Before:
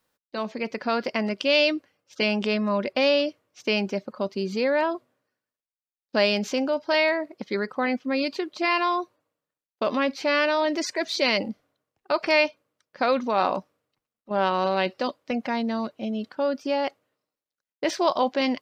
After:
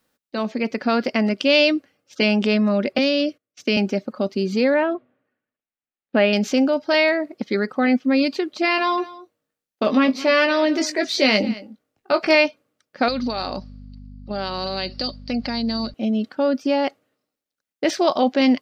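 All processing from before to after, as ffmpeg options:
-filter_complex "[0:a]asettb=1/sr,asplit=3[a][b][c];[a]atrim=end=2.984[d];[b]atrim=start=2.98:end=3.77,asetpts=PTS-STARTPTS,afade=t=in:d=0.004:c=qsin,afade=t=out:st=0.786:d=0.004:c=qsin,agate=range=-22dB:threshold=-54dB:ratio=16:release=100:detection=peak,equalizer=f=910:w=4:g=-9.5,acrossover=split=370|3000[e][f][g];[f]acompressor=threshold=-26dB:ratio=6:attack=3.2:release=140:knee=2.83:detection=peak[h];[e][h][g]amix=inputs=3:normalize=0[i];[c]atrim=start=3.766[j];[d][i]acrossfade=d=0.004:c1=hsin:c2=qsin[k];[k][j]acrossfade=d=0.004:c1=qsin:c2=hsin,asettb=1/sr,asplit=3[l][m][n];[l]atrim=end=4.744[o];[m]atrim=start=4.74:end=6.33,asetpts=PTS-STARTPTS,afade=t=in:d=0.004:c=qsin,afade=t=out:st=1.586:d=0.004:c=qsin,lowpass=f=2.9k:w=0.5412,lowpass=f=2.9k:w=1.3066,bandreject=f=50:t=h:w=6,bandreject=f=100:t=h:w=6,bandreject=f=150:t=h:w=6[p];[n]atrim=start=6.326[q];[o][p]acrossfade=d=0.004:c1=hsin:c2=qsin[r];[r][q]acrossfade=d=0.004:c1=qsin:c2=hsin,asettb=1/sr,asplit=3[s][t][u];[s]atrim=end=8.764[v];[t]atrim=start=8.76:end=12.35,asetpts=PTS-STARTPTS,afade=t=in:d=0.004:c=qsin,afade=t=out:st=3.586:d=0.004:c=qsin,asplit=2[w][x];[x]adelay=19,volume=-7dB[y];[w][y]amix=inputs=2:normalize=0,atrim=end_sample=158319,aecho=1:1:216:0.119,atrim=end_sample=158319[z];[u]atrim=start=12.346[aa];[v][z]acrossfade=d=0.004:c1=hsin:c2=qsin[ab];[ab][aa]acrossfade=d=0.004:c1=qsin:c2=hsin,asettb=1/sr,asplit=3[ac][ad][ae];[ac]atrim=end=13.084[af];[ad]atrim=start=13.08:end=15.94,asetpts=PTS-STARTPTS,afade=t=in:d=0.004:c=qsin,afade=t=out:st=2.856:d=0.004:c=qsin,lowpass=f=4.6k:t=q:w=14,acompressor=threshold=-30dB:ratio=2.5:attack=3.2:release=140:knee=1:detection=peak,aeval=exprs='val(0)+0.00708*(sin(2*PI*50*n/s)+sin(2*PI*2*50*n/s)/2+sin(2*PI*3*50*n/s)/3+sin(2*PI*4*50*n/s)/4+sin(2*PI*5*50*n/s)/5)':c=same[ag];[ae]atrim=start=15.936[ah];[af][ag]acrossfade=d=0.004:c1=hsin:c2=qsin[ai];[ai][ah]acrossfade=d=0.004:c1=qsin:c2=hsin,equalizer=f=250:w=2.4:g=6,bandreject=f=1k:w=7.3,volume=4dB"

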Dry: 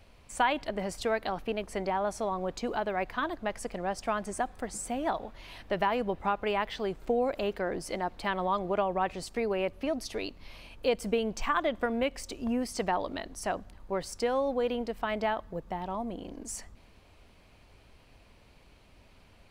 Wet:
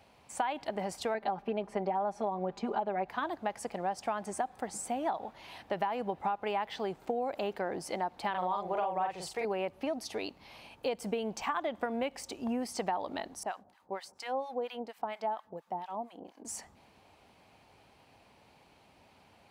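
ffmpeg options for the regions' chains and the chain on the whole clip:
-filter_complex "[0:a]asettb=1/sr,asplit=3[a][b][c];[a]atrim=end=1.144[d];[b]atrim=start=1.14:end=3.09,asetpts=PTS-STARTPTS,afade=t=in:d=0.004:c=qsin,afade=t=out:st=1.946:d=0.004:c=qsin,lowpass=f=1.7k:p=1,aecho=1:1:5:0.93,atrim=end_sample=85995[e];[c]atrim=start=3.086[f];[d][e]acrossfade=d=0.004:c1=hsin:c2=qsin[g];[g][f]acrossfade=d=0.004:c1=qsin:c2=hsin,asettb=1/sr,asplit=3[h][i][j];[h]atrim=end=8.304[k];[i]atrim=start=8.3:end=9.45,asetpts=PTS-STARTPTS,afade=t=in:d=0.004:c=qsin,afade=t=out:st=1.146:d=0.004:c=qsin,equalizer=f=250:w=3:g=-15,asplit=2[l][m];[m]adelay=44,volume=-3dB[n];[l][n]amix=inputs=2:normalize=0,atrim=end_sample=50715[o];[j]atrim=start=9.446[p];[k][o]acrossfade=d=0.004:c1=hsin:c2=qsin[q];[q][p]acrossfade=d=0.004:c1=qsin:c2=hsin,asettb=1/sr,asplit=3[r][s][t];[r]atrim=end=13.434[u];[s]atrim=start=13.43:end=16.45,asetpts=PTS-STARTPTS,afade=t=in:d=0.004:c=qsin,afade=t=out:st=3.016:d=0.004:c=qsin,highpass=f=270:p=1,acrossover=split=1000[v][w];[v]aeval=exprs='val(0)*(1-1/2+1/2*cos(2*PI*4.3*n/s))':c=same[x];[w]aeval=exprs='val(0)*(1-1/2-1/2*cos(2*PI*4.3*n/s))':c=same[y];[x][y]amix=inputs=2:normalize=0[z];[t]atrim=start=16.446[aa];[u][z]acrossfade=d=0.004:c1=hsin:c2=qsin[ab];[ab][aa]acrossfade=d=0.004:c1=qsin:c2=hsin,highpass=120,equalizer=f=820:w=3.4:g=9,acompressor=threshold=-27dB:ratio=6,volume=-2dB"

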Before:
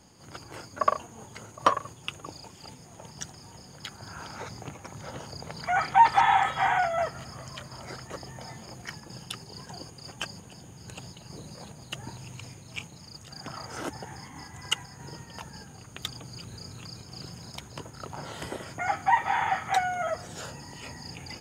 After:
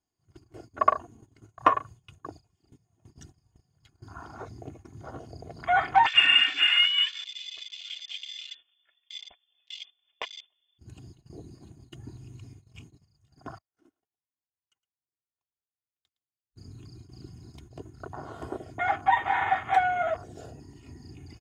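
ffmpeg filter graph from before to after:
-filter_complex "[0:a]asettb=1/sr,asplit=3[a][b][c];[a]atrim=end=6.064[d];[b]atrim=start=6.06:end=10.79,asetpts=PTS-STARTPTS,afade=t=in:d=0.004:c=qsin,afade=t=out:st=4.726:d=0.004:c=qsin,lowshelf=f=240:g=7,lowpass=f=3.1k:t=q:w=0.5098,lowpass=f=3.1k:t=q:w=0.6013,lowpass=f=3.1k:t=q:w=0.9,lowpass=f=3.1k:t=q:w=2.563,afreqshift=-3600[e];[c]atrim=start=10.786[f];[d][e]acrossfade=d=0.004:c1=hsin:c2=qsin[g];[g][f]acrossfade=d=0.004:c1=qsin:c2=hsin,asettb=1/sr,asplit=3[h][i][j];[h]atrim=end=13.584[k];[i]atrim=start=13.58:end=16.56,asetpts=PTS-STARTPTS,afade=t=in:d=0.004:c=qsin,afade=t=out:st=2.976:d=0.004:c=qsin,agate=range=-32dB:threshold=-36dB:ratio=16:release=100:detection=peak,acompressor=threshold=-40dB:ratio=16:attack=3.2:release=140:knee=1:detection=peak,aecho=1:1:113:0.178,atrim=end_sample=131418[l];[j]atrim=start=16.556[m];[k][l]acrossfade=d=0.004:c1=hsin:c2=qsin[n];[n][m]acrossfade=d=0.004:c1=qsin:c2=hsin,afwtdn=0.0141,agate=range=-15dB:threshold=-48dB:ratio=16:detection=peak,aecho=1:1:2.8:0.56"

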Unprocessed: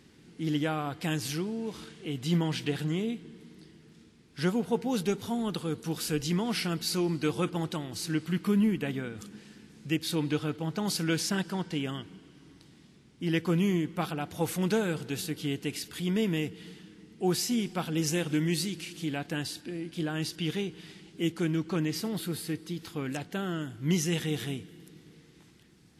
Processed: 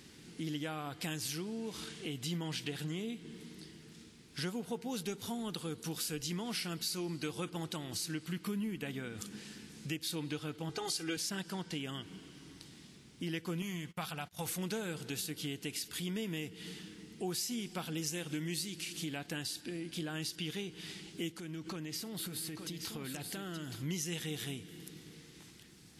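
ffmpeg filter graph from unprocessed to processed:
-filter_complex "[0:a]asettb=1/sr,asplit=3[a][b][c];[a]atrim=end=10.694[d];[b]atrim=start=10.69:end=11.17,asetpts=PTS-STARTPTS,afade=t=in:d=0.004:c=qsin,afade=t=out:st=0.476:d=0.004:c=qsin,lowpass=f=11k:w=0.5412,lowpass=f=11k:w=1.3066,aecho=1:1:2.5:0.93,atrim=end_sample=21168[e];[c]atrim=start=11.166[f];[d][e]acrossfade=d=0.004:c1=hsin:c2=qsin[g];[g][f]acrossfade=d=0.004:c1=qsin:c2=hsin,asettb=1/sr,asplit=3[h][i][j];[h]atrim=end=13.624[k];[i]atrim=start=13.62:end=14.46,asetpts=PTS-STARTPTS,afade=t=in:d=0.004:c=qsin,afade=t=out:st=0.836:d=0.004:c=qsin,agate=range=-26dB:threshold=-42dB:ratio=16:release=100:detection=peak,equalizer=f=330:t=o:w=1.2:g=-11.5[l];[j]atrim=start=14.456[m];[k][l]acrossfade=d=0.004:c1=hsin:c2=qsin[n];[n][m]acrossfade=d=0.004:c1=qsin:c2=hsin,asettb=1/sr,asplit=3[o][p][q];[o]atrim=end=21.334[r];[p]atrim=start=21.33:end=23.83,asetpts=PTS-STARTPTS,afade=t=in:d=0.004:c=qsin,afade=t=out:st=2.496:d=0.004:c=qsin,acompressor=threshold=-37dB:ratio=6:attack=3.2:release=140:knee=1:detection=peak,aecho=1:1:873:0.398,atrim=end_sample=110250[s];[q]atrim=start=23.826[t];[r][s]acrossfade=d=0.004:c1=hsin:c2=qsin[u];[u][t]acrossfade=d=0.004:c1=qsin:c2=hsin,highshelf=f=2.6k:g=8.5,acompressor=threshold=-39dB:ratio=3"

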